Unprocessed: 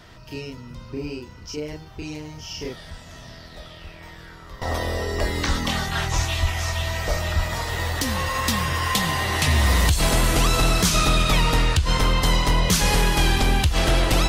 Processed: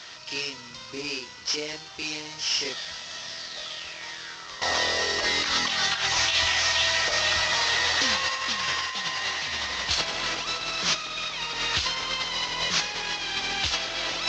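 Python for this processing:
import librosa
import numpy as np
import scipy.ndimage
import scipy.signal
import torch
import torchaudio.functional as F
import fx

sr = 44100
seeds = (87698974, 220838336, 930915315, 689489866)

y = fx.cvsd(x, sr, bps=32000)
y = fx.highpass(y, sr, hz=880.0, slope=6)
y = fx.over_compress(y, sr, threshold_db=-31.0, ratio=-0.5)
y = fx.high_shelf(y, sr, hz=2500.0, db=11.5)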